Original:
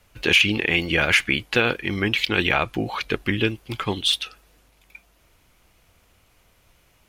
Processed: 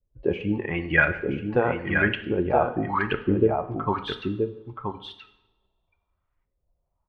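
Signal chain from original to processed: per-bin expansion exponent 1.5; LFO low-pass saw up 0.93 Hz 370–2000 Hz; on a send: echo 0.976 s -5.5 dB; on the sum: two-slope reverb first 0.7 s, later 1.8 s, from -20 dB, DRR 8.5 dB

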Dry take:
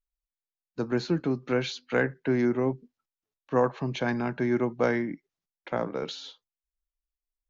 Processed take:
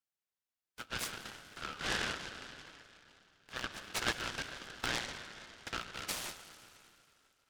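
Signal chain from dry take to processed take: 1.03 tape stop 1.64 s; steep high-pass 1300 Hz 96 dB/oct; 4.42–4.96 level quantiser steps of 18 dB; reverb RT60 3.0 s, pre-delay 93 ms, DRR 8 dB; noise-modulated delay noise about 1400 Hz, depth 0.11 ms; gain +1 dB

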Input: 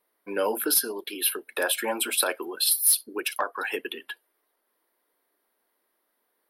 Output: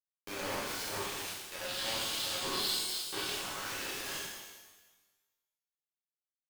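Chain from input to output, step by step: time blur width 95 ms; recorder AGC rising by 31 dB/s; brick-wall FIR band-pass 190–8100 Hz; tone controls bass -13 dB, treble +1 dB; notches 50/100/150/200/250/300/350/400/450/500 Hz; comb 5.5 ms, depth 42%; level quantiser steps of 19 dB; limiter -32.5 dBFS, peak gain reduction 8.5 dB; bit-crush 6-bit; spectral gain 1.65–3.3, 2700–5400 Hz +8 dB; shimmer reverb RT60 1.2 s, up +12 st, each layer -8 dB, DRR -8 dB; gain -5.5 dB

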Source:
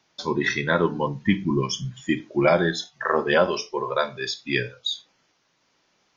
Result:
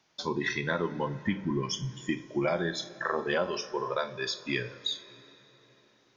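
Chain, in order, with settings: compressor 2.5:1, threshold -25 dBFS, peak gain reduction 8 dB; on a send: reverb RT60 4.5 s, pre-delay 22 ms, DRR 16 dB; on the sum: gain -3 dB

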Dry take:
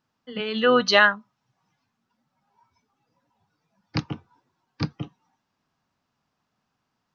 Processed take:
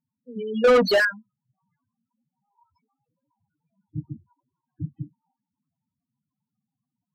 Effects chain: loudest bins only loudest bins 4; 0.64–1.05 overdrive pedal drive 29 dB, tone 1700 Hz, clips at -10 dBFS; rotary speaker horn 1 Hz, later 7 Hz, at 3.05; gain +1.5 dB

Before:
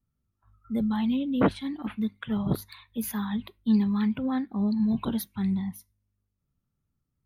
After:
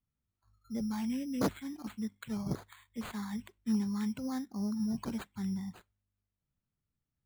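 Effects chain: careless resampling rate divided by 8×, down none, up hold; gain -8.5 dB

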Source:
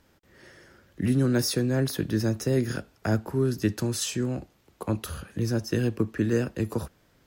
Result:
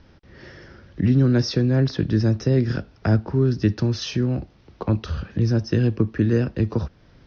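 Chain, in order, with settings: steep low-pass 5900 Hz 96 dB/oct; low shelf 200 Hz +9.5 dB; in parallel at +1 dB: compressor, threshold -36 dBFS, peak gain reduction 20 dB

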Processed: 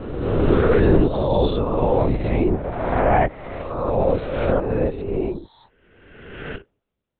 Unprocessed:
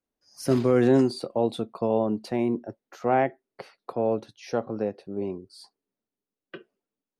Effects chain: spectral swells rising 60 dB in 1.46 s; in parallel at +0.5 dB: limiter -16 dBFS, peak gain reduction 7 dB; on the sum: LPC vocoder at 8 kHz whisper

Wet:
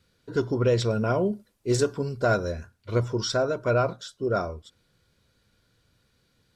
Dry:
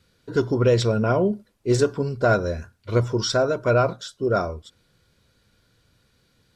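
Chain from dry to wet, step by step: 0.9–2.52 high shelf 5500 Hz +7 dB; gain -4 dB

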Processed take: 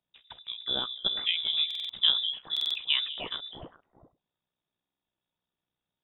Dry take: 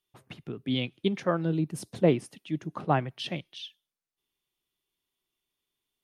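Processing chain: AM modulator 62 Hz, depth 45%; delay with a stepping band-pass 0.1 s, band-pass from 160 Hz, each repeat 1.4 oct, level -3.5 dB; inverted band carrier 3700 Hz; stuck buffer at 1.66/2.52/4.81, samples 2048, times 4

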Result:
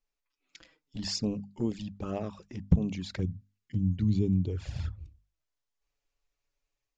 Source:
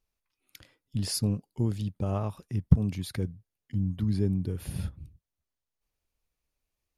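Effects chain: bell 110 Hz -13 dB 0.71 oct, from 3.19 s 640 Hz, from 4.45 s 190 Hz; AGC gain up to 4 dB; envelope flanger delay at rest 7.1 ms, full sweep at -23 dBFS; Chebyshev low-pass 7400 Hz, order 6; notches 50/100/150/200/250 Hz

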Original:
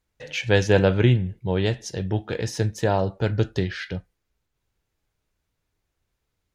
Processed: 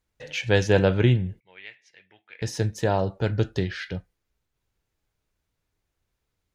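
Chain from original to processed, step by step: 1.4–2.42 band-pass 2200 Hz, Q 6.5; gain -1.5 dB

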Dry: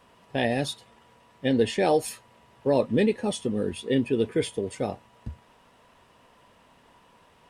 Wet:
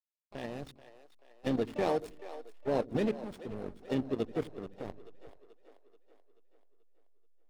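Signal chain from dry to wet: backlash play -23 dBFS; level quantiser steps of 12 dB; harmoniser +4 st -18 dB, +7 st -13 dB; on a send: split-band echo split 360 Hz, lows 82 ms, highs 0.433 s, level -14.5 dB; on the sum: gain -5 dB

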